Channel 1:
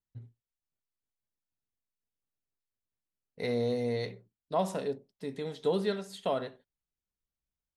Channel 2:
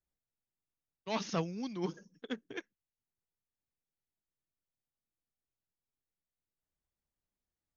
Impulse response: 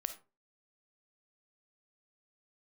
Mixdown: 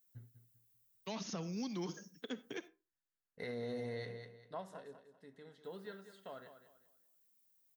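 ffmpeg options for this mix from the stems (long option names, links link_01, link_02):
-filter_complex "[0:a]equalizer=frequency=1600:width=1.8:gain=10.5,bandreject=frequency=2400:width=7.3,volume=-7.5dB,afade=type=out:start_time=4.35:duration=0.27:silence=0.237137,asplit=2[link_01][link_02];[link_02]volume=-11dB[link_03];[1:a]aemphasis=mode=production:type=riaa,acrossover=split=300|1200[link_04][link_05][link_06];[link_04]acompressor=threshold=-49dB:ratio=4[link_07];[link_05]acompressor=threshold=-43dB:ratio=4[link_08];[link_06]acompressor=threshold=-48dB:ratio=4[link_09];[link_07][link_08][link_09]amix=inputs=3:normalize=0,equalizer=frequency=160:width=0.75:gain=11,volume=-3dB,asplit=3[link_10][link_11][link_12];[link_10]atrim=end=2.68,asetpts=PTS-STARTPTS,afade=type=out:start_time=2.676:duration=0.004:curve=hsin[link_13];[link_11]atrim=start=2.68:end=5.64,asetpts=PTS-STARTPTS,volume=0[link_14];[link_12]atrim=start=5.64,asetpts=PTS-STARTPTS,afade=type=in:duration=0.004:curve=hsin[link_15];[link_13][link_14][link_15]concat=n=3:v=0:a=1,asplit=2[link_16][link_17];[link_17]volume=-3dB[link_18];[2:a]atrim=start_sample=2205[link_19];[link_18][link_19]afir=irnorm=-1:irlink=0[link_20];[link_03]aecho=0:1:196|392|588|784:1|0.3|0.09|0.027[link_21];[link_01][link_16][link_20][link_21]amix=inputs=4:normalize=0,alimiter=level_in=8.5dB:limit=-24dB:level=0:latency=1:release=62,volume=-8.5dB"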